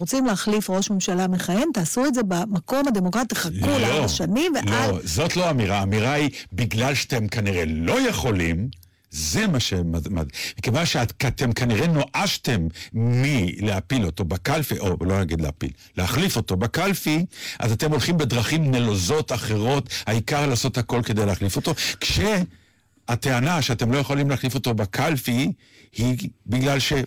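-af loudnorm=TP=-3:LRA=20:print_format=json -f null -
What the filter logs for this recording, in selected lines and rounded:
"input_i" : "-22.6",
"input_tp" : "-15.8",
"input_lra" : "1.7",
"input_thresh" : "-32.7",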